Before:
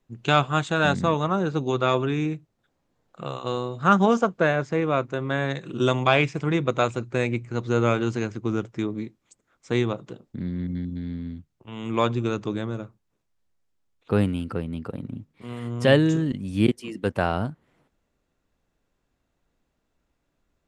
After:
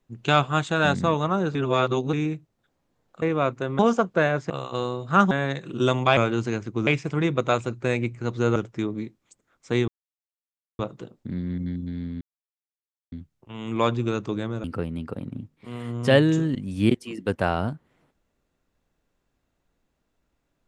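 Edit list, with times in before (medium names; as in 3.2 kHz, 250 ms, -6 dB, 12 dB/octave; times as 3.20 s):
1.55–2.13 s: reverse
3.22–4.03 s: swap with 4.74–5.31 s
7.86–8.56 s: move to 6.17 s
9.88 s: insert silence 0.91 s
11.30 s: insert silence 0.91 s
12.82–14.41 s: delete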